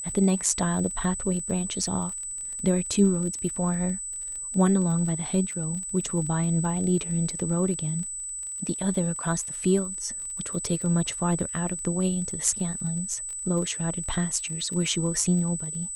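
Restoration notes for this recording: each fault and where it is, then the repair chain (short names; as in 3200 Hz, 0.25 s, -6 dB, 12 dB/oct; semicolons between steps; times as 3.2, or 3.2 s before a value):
crackle 27/s -33 dBFS
tone 8000 Hz -32 dBFS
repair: de-click; notch 8000 Hz, Q 30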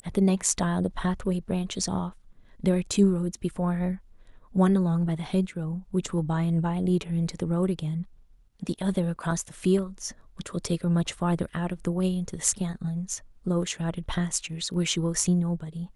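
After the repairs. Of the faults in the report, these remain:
none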